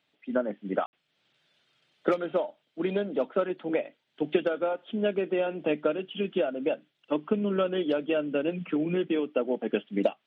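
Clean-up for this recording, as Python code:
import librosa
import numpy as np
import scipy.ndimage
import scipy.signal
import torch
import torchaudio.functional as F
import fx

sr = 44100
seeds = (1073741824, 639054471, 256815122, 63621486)

y = fx.fix_ambience(x, sr, seeds[0], print_start_s=1.53, print_end_s=2.03, start_s=0.86, end_s=0.93)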